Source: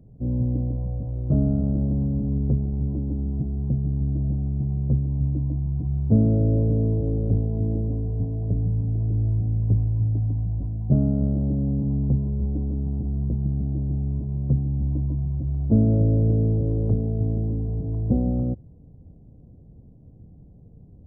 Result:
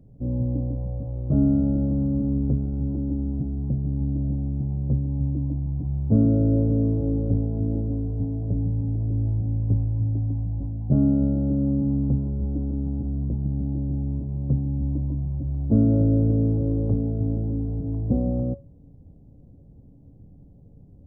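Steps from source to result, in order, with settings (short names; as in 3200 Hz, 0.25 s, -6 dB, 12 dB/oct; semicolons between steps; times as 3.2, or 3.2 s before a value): resonator 280 Hz, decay 0.28 s, harmonics all, mix 70%; gain +8 dB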